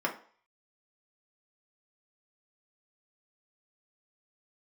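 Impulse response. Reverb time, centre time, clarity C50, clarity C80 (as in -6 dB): 0.45 s, 14 ms, 11.5 dB, 16.5 dB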